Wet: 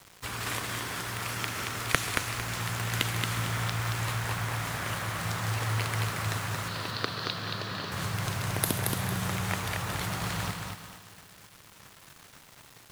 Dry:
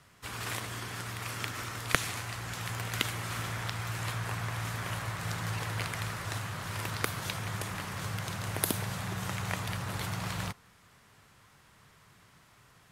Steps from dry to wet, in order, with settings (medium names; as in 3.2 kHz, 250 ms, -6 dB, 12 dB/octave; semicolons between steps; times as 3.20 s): in parallel at +1 dB: compression, threshold -44 dBFS, peak gain reduction 22.5 dB; on the sum: bit crusher 8-bit; 6.68–7.92 s: cabinet simulation 140–4800 Hz, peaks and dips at 840 Hz -6 dB, 2.2 kHz -8 dB, 4.3 kHz +9 dB; multi-head delay 67 ms, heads second and third, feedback 72%, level -17 dB; bit-crushed delay 226 ms, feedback 35%, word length 8-bit, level -4 dB